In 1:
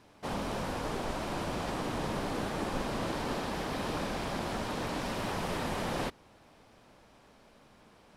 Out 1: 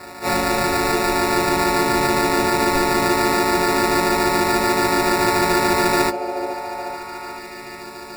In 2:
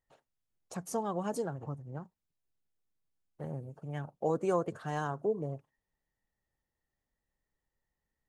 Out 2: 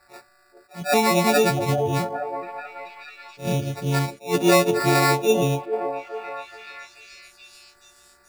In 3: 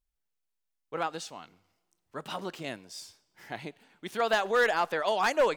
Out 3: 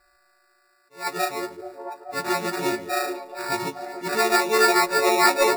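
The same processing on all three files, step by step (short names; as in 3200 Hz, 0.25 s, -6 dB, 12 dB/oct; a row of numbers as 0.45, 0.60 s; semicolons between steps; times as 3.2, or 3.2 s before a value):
frequency quantiser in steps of 4 st; de-hum 53.08 Hz, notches 7; sample-and-hold 14×; compressor 1.5:1, threshold -47 dBFS; delay with a stepping band-pass 0.43 s, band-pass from 430 Hz, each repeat 0.7 oct, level -6 dB; attack slew limiter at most 210 dB/s; normalise peaks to -6 dBFS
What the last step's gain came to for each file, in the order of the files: +19.0, +21.0, +14.0 dB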